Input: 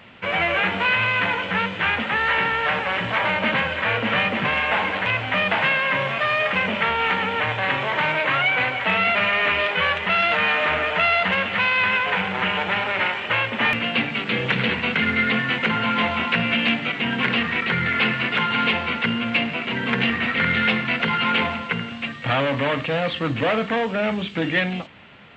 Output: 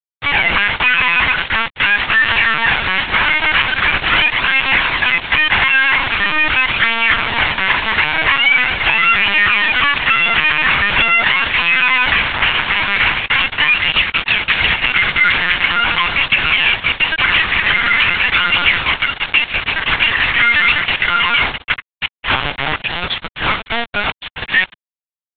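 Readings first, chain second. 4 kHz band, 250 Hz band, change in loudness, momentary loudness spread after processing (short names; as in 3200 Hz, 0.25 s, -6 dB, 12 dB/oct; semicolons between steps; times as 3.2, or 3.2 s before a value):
+10.0 dB, -4.5 dB, +8.0 dB, 6 LU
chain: Bessel high-pass 1500 Hz, order 2; flange 0.43 Hz, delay 0.2 ms, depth 3 ms, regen +25%; bit-crush 5-bit; LPC vocoder at 8 kHz pitch kept; maximiser +16.5 dB; gain -1 dB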